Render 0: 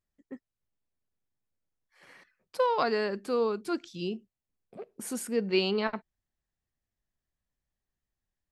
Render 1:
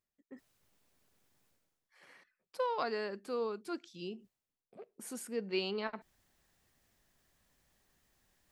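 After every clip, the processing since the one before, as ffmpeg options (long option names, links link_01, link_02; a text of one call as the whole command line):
ffmpeg -i in.wav -af "lowshelf=frequency=120:gain=-10.5,areverse,acompressor=mode=upward:threshold=-45dB:ratio=2.5,areverse,volume=-7.5dB" out.wav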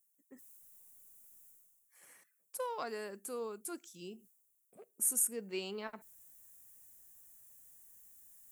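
ffmpeg -i in.wav -af "aexciter=amount=7.2:drive=9:freq=6600,volume=-5dB" out.wav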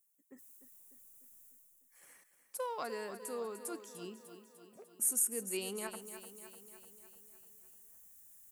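ffmpeg -i in.wav -af "aecho=1:1:299|598|897|1196|1495|1794|2093:0.282|0.166|0.0981|0.0579|0.0342|0.0201|0.0119" out.wav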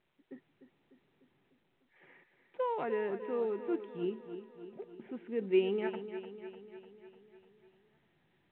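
ffmpeg -i in.wav -af "asuperstop=centerf=1100:order=8:qfactor=7.9,highpass=120,equalizer=frequency=150:width_type=q:width=4:gain=9,equalizer=frequency=370:width_type=q:width=4:gain=8,equalizer=frequency=610:width_type=q:width=4:gain=-5,equalizer=frequency=1400:width_type=q:width=4:gain=-8,lowpass=frequency=2600:width=0.5412,lowpass=frequency=2600:width=1.3066,volume=6dB" -ar 8000 -c:a pcm_mulaw out.wav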